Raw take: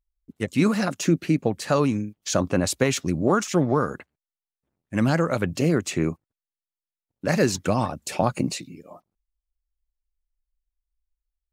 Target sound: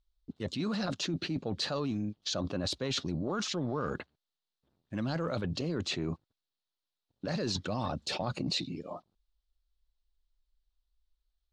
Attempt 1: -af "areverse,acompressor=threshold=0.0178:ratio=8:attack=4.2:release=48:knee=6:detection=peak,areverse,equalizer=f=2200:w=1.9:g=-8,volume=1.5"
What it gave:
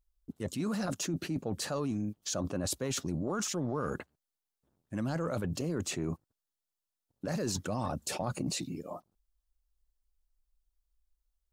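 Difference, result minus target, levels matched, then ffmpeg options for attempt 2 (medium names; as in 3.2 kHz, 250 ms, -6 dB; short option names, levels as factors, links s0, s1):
4 kHz band -5.5 dB
-af "areverse,acompressor=threshold=0.0178:ratio=8:attack=4.2:release=48:knee=6:detection=peak,areverse,lowpass=f=4000:t=q:w=2.7,equalizer=f=2200:w=1.9:g=-8,volume=1.5"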